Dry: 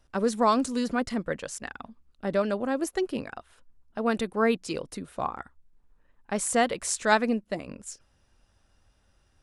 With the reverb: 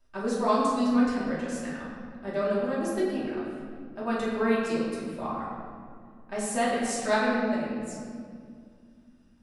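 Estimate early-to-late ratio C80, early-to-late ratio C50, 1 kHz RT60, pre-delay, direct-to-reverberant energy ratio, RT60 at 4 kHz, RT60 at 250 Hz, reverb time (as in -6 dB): 1.5 dB, -0.5 dB, 2.0 s, 3 ms, -9.0 dB, 1.3 s, 3.4 s, 2.2 s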